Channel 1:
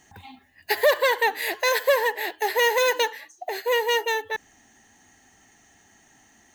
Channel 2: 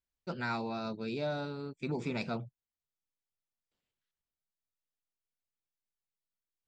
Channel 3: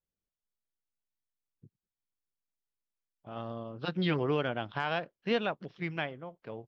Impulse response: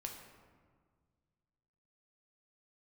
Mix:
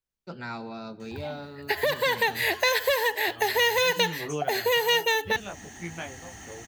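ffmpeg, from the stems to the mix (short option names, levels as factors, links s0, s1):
-filter_complex "[0:a]acrossover=split=3400[s0][s1];[s1]acompressor=threshold=0.00794:ratio=4:attack=1:release=60[s2];[s0][s2]amix=inputs=2:normalize=0,equalizer=f=84:t=o:w=1.1:g=9.5,dynaudnorm=f=410:g=5:m=5.62,adelay=1000,volume=1[s3];[1:a]volume=0.708,asplit=2[s4][s5];[s5]volume=0.355[s6];[2:a]flanger=delay=17:depth=3.4:speed=1,volume=1[s7];[3:a]atrim=start_sample=2205[s8];[s6][s8]afir=irnorm=-1:irlink=0[s9];[s3][s4][s7][s9]amix=inputs=4:normalize=0,acrossover=split=170|3000[s10][s11][s12];[s11]acompressor=threshold=0.0562:ratio=5[s13];[s10][s13][s12]amix=inputs=3:normalize=0"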